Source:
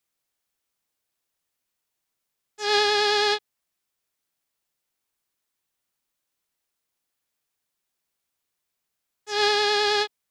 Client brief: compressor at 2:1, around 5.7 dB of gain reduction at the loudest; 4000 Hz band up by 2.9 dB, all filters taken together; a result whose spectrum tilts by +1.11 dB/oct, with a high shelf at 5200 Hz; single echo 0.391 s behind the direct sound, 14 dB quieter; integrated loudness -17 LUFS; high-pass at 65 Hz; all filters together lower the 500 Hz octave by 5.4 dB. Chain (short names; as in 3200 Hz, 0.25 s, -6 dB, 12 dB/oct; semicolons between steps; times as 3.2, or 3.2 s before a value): HPF 65 Hz; bell 500 Hz -7 dB; bell 4000 Hz +6 dB; high shelf 5200 Hz -6 dB; compressor 2:1, threshold -27 dBFS; echo 0.391 s -14 dB; gain +9.5 dB